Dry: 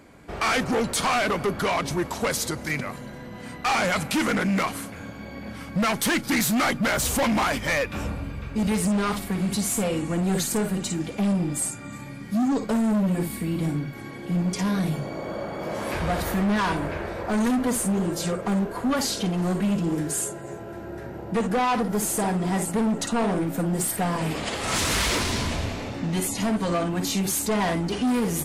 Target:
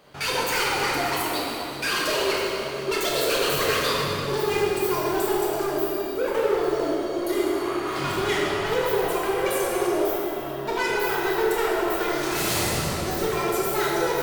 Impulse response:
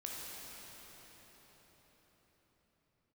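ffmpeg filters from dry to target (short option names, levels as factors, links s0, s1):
-filter_complex "[1:a]atrim=start_sample=2205[s0];[0:a][s0]afir=irnorm=-1:irlink=0,asetrate=88200,aresample=44100"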